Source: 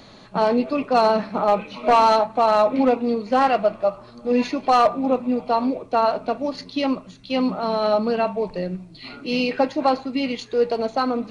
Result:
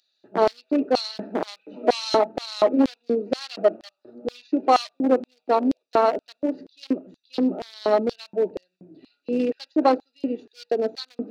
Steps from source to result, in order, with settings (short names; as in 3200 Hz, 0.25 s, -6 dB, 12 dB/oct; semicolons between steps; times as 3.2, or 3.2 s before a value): Wiener smoothing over 41 samples; wow and flutter 16 cents; LFO high-pass square 2.1 Hz 330–4300 Hz